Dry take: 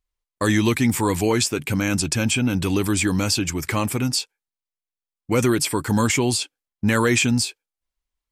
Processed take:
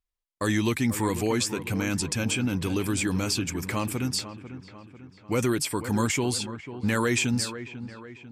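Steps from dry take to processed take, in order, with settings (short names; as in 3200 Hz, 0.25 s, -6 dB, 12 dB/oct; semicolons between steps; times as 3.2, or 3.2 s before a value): dark delay 0.495 s, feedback 49%, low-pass 2300 Hz, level -12 dB; gain -6 dB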